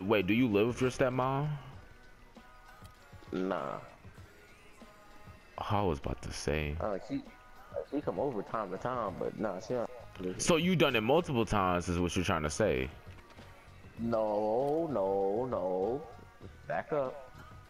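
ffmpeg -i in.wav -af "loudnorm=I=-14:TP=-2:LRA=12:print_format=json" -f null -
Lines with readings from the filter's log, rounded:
"input_i" : "-33.1",
"input_tp" : "-15.0",
"input_lra" : "6.6",
"input_thresh" : "-44.4",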